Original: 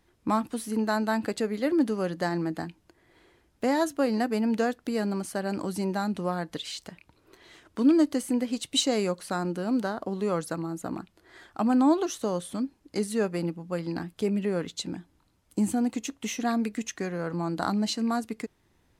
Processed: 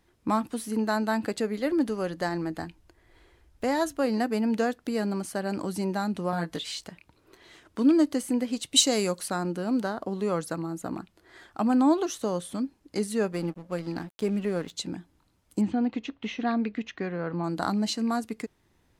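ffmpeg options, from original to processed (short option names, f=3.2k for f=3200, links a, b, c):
-filter_complex "[0:a]asplit=3[a][b][c];[a]afade=t=out:st=1.57:d=0.02[d];[b]asubboost=boost=6.5:cutoff=74,afade=t=in:st=1.57:d=0.02,afade=t=out:st=4.03:d=0.02[e];[c]afade=t=in:st=4.03:d=0.02[f];[d][e][f]amix=inputs=3:normalize=0,asettb=1/sr,asplit=3[g][h][i];[g]atrim=end=6.314[j];[h]atrim=start=6.31:end=6.84,asetpts=PTS-STARTPTS,afade=t=in:d=0.004:c=qsin,afade=t=out:st=0.526:d=0.004:c=qsin,asplit=2[k][l];[l]adelay=18,volume=-3dB[m];[k][m]amix=inputs=2:normalize=0,atrim=end_sample=23373[n];[i]atrim=start=6.836[o];[j][n]acrossfade=d=0.004:c1=hsin:c2=qsin[p];[p][o]acrossfade=d=0.004:c1=qsin:c2=hsin,asettb=1/sr,asplit=3[q][r][s];[q]atrim=end=8.764[t];[r]atrim=start=8.76:end=9.28,asetpts=PTS-STARTPTS,afade=t=in:d=0.004:c=qsin,afade=t=out:st=0.516:d=0.004:c=qsin,highshelf=f=4.2k:g=10[u];[s]atrim=start=9.276[v];[t][u]acrossfade=d=0.004:c1=hsin:c2=qsin[w];[w][v]acrossfade=d=0.004:c1=qsin:c2=hsin,asettb=1/sr,asplit=3[x][y][z];[x]atrim=end=13.324[aa];[y]atrim=start=13.32:end=14.71,asetpts=PTS-STARTPTS,afade=t=in:d=0.004:c=qsin,afade=t=out:st=1.386:d=0.004:c=qsin,aeval=exprs='sgn(val(0))*max(abs(val(0))-0.00447,0)':c=same[ab];[z]atrim=start=14.706[ac];[aa][ab]acrossfade=d=0.004:c1=hsin:c2=qsin[ad];[ad][ac]acrossfade=d=0.004:c1=qsin:c2=hsin,asettb=1/sr,asplit=3[ae][af][ag];[ae]atrim=end=15.614[ah];[af]atrim=start=15.61:end=17.44,asetpts=PTS-STARTPTS,afade=t=in:d=0.004:c=qsin,afade=t=out:st=1.826:d=0.004:c=qsin,lowpass=f=3.9k:w=0.5412,lowpass=f=3.9k:w=1.3066[ai];[ag]atrim=start=17.436[aj];[ah][ai]acrossfade=d=0.004:c1=hsin:c2=qsin[ak];[ak][aj]acrossfade=d=0.004:c1=qsin:c2=hsin"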